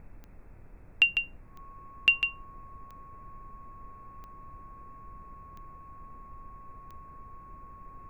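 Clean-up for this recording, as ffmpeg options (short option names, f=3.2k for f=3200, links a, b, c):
-af "adeclick=t=4,bandreject=f=1.1k:w=30,afftdn=nr=30:nf=-50"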